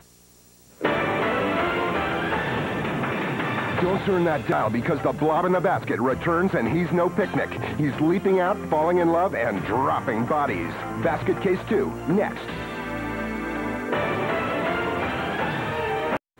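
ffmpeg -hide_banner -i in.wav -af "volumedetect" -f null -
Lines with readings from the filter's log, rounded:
mean_volume: -24.0 dB
max_volume: -8.3 dB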